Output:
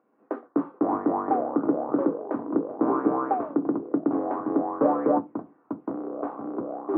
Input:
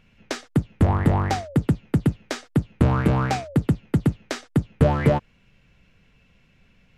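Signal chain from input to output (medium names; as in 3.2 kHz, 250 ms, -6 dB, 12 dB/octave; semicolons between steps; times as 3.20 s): tracing distortion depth 0.15 ms; ever faster or slower copies 136 ms, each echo -6 st, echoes 3; Chebyshev band-pass 290–1200 Hz, order 3; on a send: bass shelf 390 Hz +11 dB + reverberation RT60 0.20 s, pre-delay 3 ms, DRR 7 dB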